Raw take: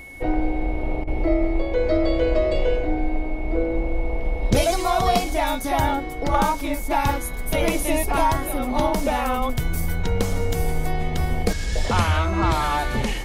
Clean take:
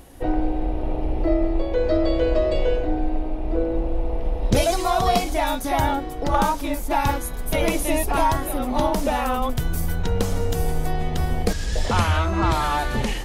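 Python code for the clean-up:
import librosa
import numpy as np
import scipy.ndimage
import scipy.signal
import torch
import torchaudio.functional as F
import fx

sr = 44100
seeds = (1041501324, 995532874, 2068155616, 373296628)

y = fx.notch(x, sr, hz=2200.0, q=30.0)
y = fx.fix_interpolate(y, sr, at_s=(1.04,), length_ms=32.0)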